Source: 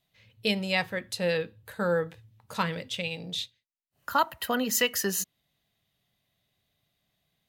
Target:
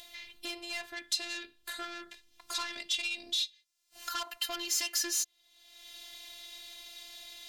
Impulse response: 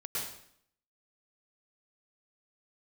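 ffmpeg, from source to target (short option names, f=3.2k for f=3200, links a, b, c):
-af "acompressor=mode=upward:threshold=-33dB:ratio=2.5,lowshelf=f=350:g=-6,asoftclip=type=tanh:threshold=-30dB,acompressor=threshold=-37dB:ratio=2.5,asetnsamples=n=441:p=0,asendcmd='0.97 equalizer g 13.5',equalizer=f=5.2k:t=o:w=2.5:g=6,afftfilt=real='hypot(re,im)*cos(PI*b)':imag='0':win_size=512:overlap=0.75"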